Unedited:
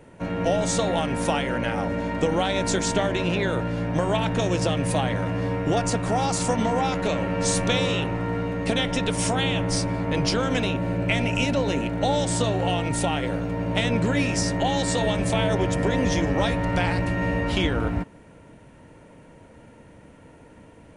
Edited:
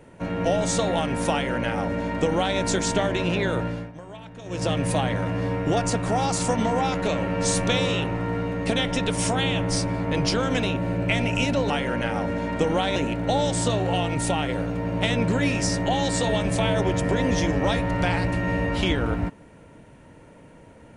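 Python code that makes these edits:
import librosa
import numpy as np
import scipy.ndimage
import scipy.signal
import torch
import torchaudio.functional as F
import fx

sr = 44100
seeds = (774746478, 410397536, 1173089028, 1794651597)

y = fx.edit(x, sr, fx.duplicate(start_s=1.32, length_s=1.26, to_s=11.7),
    fx.fade_down_up(start_s=3.65, length_s=1.06, db=-17.5, fade_s=0.27), tone=tone)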